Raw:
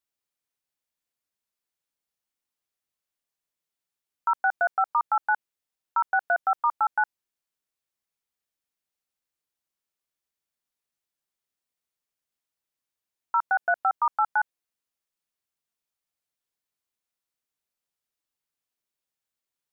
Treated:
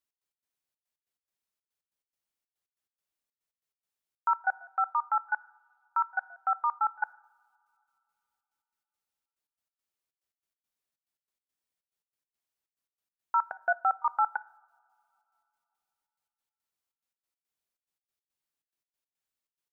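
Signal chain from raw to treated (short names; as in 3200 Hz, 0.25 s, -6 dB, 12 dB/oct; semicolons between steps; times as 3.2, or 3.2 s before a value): 4.53–6.91 band-pass 1600 Hz, Q 0.83; step gate "x.x.xxx." 141 bpm -24 dB; two-slope reverb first 0.74 s, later 3.1 s, from -18 dB, DRR 18.5 dB; gain -2.5 dB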